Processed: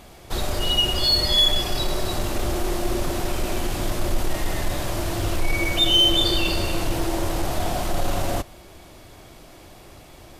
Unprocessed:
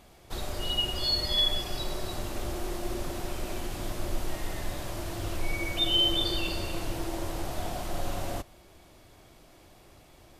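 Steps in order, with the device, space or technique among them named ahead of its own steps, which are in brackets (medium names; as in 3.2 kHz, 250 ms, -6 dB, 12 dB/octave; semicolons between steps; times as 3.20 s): parallel distortion (in parallel at -4 dB: hard clipper -29 dBFS, distortion -9 dB); on the sum: trim +5.5 dB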